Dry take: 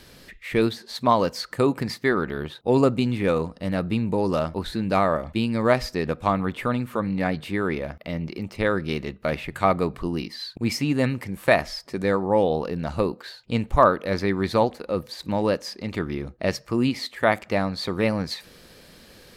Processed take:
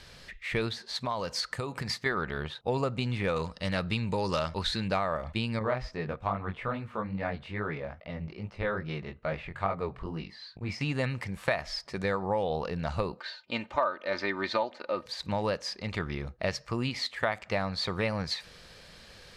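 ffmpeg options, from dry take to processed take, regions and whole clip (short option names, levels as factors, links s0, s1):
-filter_complex "[0:a]asettb=1/sr,asplit=3[s0][s1][s2];[s0]atrim=end=1.054[s3];[s1]atrim=start=1.05:end=2.06,asetpts=PTS-STARTPTS,afade=t=in:d=0.004:c=qsin,afade=t=out:st=1.006:d=0.004:c=qsin,highshelf=f=5700:g=6,acompressor=threshold=0.0562:ratio=5:attack=3.2:release=140:knee=1:detection=peak[s4];[s2]atrim=start=2.056[s5];[s3][s4]acrossfade=d=0.004:c1=hsin:c2=qsin[s6];[s6][s5]acrossfade=d=0.004:c1=qsin:c2=hsin,asettb=1/sr,asplit=3[s7][s8][s9];[s7]atrim=end=3.364[s10];[s8]atrim=start=3.36:end=4.88,asetpts=PTS-STARTPTS,afade=t=in:d=0.004:c=qsin,afade=t=out:st=1.516:d=0.004:c=qsin,equalizer=f=5400:t=o:w=2.6:g=8,bandreject=f=710:w=11[s11];[s9]atrim=start=4.876[s12];[s10][s11]acrossfade=d=0.004:c1=hsin:c2=qsin[s13];[s13][s12]acrossfade=d=0.004:c1=qsin:c2=hsin,asettb=1/sr,asplit=3[s14][s15][s16];[s14]atrim=end=5.594[s17];[s15]atrim=start=5.59:end=10.81,asetpts=PTS-STARTPTS,afade=t=in:d=0.004:c=qsin,afade=t=out:st=5.216:d=0.004:c=qsin,lowpass=f=1700:p=1,flanger=delay=18.5:depth=5.1:speed=2.4[s18];[s16]atrim=start=10.806[s19];[s17][s18]acrossfade=d=0.004:c1=hsin:c2=qsin[s20];[s20][s19]acrossfade=d=0.004:c1=qsin:c2=hsin,asettb=1/sr,asplit=3[s21][s22][s23];[s21]atrim=end=13.194[s24];[s22]atrim=start=13.19:end=15.06,asetpts=PTS-STARTPTS,afade=t=in:d=0.004:c=qsin,afade=t=out:st=1.866:d=0.004:c=qsin,highpass=250,lowpass=4700,aecho=1:1:3.3:0.6,atrim=end_sample=82467[s25];[s23]atrim=start=15.056[s26];[s24][s25]acrossfade=d=0.004:c1=hsin:c2=qsin[s27];[s27][s26]acrossfade=d=0.004:c1=qsin:c2=hsin,lowpass=7100,equalizer=f=290:w=1.1:g=-11,acompressor=threshold=0.0562:ratio=6"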